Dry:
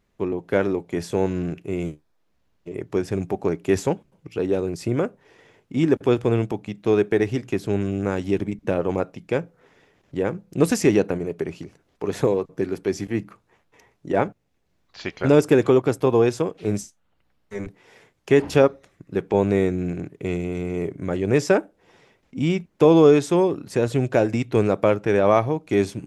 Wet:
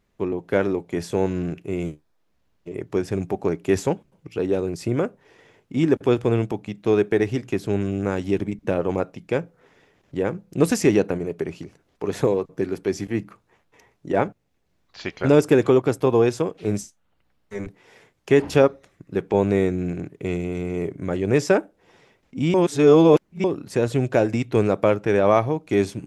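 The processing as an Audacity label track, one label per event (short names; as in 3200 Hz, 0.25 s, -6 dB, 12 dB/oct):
22.540000	23.440000	reverse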